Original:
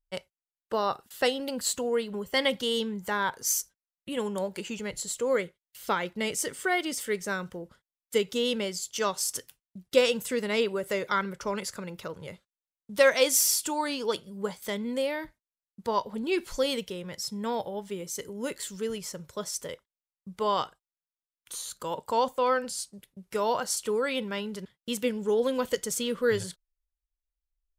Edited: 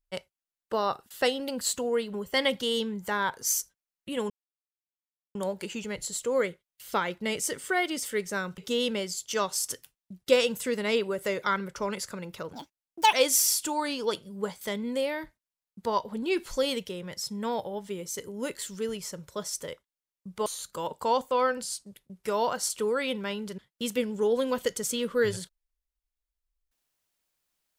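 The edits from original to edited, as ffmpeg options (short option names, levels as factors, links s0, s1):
-filter_complex "[0:a]asplit=6[s0][s1][s2][s3][s4][s5];[s0]atrim=end=4.3,asetpts=PTS-STARTPTS,afade=t=out:st=4.296:d=0.004:c=hsin,apad=pad_dur=1.05[s6];[s1]atrim=start=4.3:end=7.532,asetpts=PTS-STARTPTS,afade=t=in:d=0.004:c=hsin[s7];[s2]atrim=start=8.228:end=12.184[s8];[s3]atrim=start=12.18:end=13.14,asetpts=PTS-STARTPTS,asetrate=70560,aresample=44100[s9];[s4]atrim=start=13.136:end=20.472[s10];[s5]atrim=start=21.528[s11];[s6][s7]concat=n=2:v=0:a=1[s12];[s12][s8]acrossfade=d=0.004:c1=hsin:c2=hsin[s13];[s13][s9]acrossfade=d=0.004:c1=hsin:c2=hsin[s14];[s14][s10]acrossfade=d=0.004:c1=hsin:c2=hsin[s15];[s15][s11]acrossfade=d=0.004:c1=hsin:c2=hsin"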